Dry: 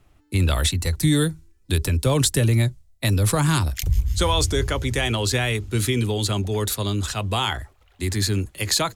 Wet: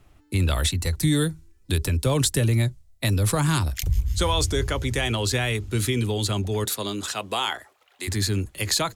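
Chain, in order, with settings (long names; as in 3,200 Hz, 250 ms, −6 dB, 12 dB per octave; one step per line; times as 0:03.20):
0:06.64–0:08.07: high-pass filter 180 Hz → 540 Hz 12 dB per octave
in parallel at −1 dB: downward compressor, threshold −33 dBFS, peak gain reduction 17 dB
on the sum: level −3.5 dB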